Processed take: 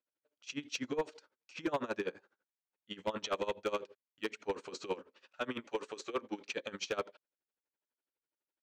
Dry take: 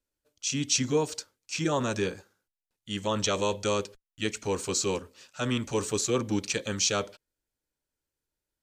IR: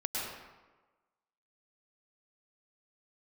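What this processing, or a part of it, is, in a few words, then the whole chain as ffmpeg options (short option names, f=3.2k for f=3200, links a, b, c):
helicopter radio: -filter_complex "[0:a]asettb=1/sr,asplit=3[a][b][c];[a]atrim=end=5.624[d];[b]atrim=start=5.62:end=6.48,asetpts=PTS-STARTPTS,afade=t=in:d=0.004:c=qsin,afade=t=out:st=0.856:d=0.004:c=qsin,highpass=f=360:p=1[e];[c]atrim=start=6.476[f];[d][e]acrossfade=d=0.004:c1=hsin:c2=qsin[g];[g][f]acrossfade=d=0.004:c1=qsin:c2=hsin,highpass=320,lowpass=2.6k,aeval=exprs='val(0)*pow(10,-21*(0.5-0.5*cos(2*PI*12*n/s))/20)':c=same,asoftclip=type=hard:threshold=-26.5dB"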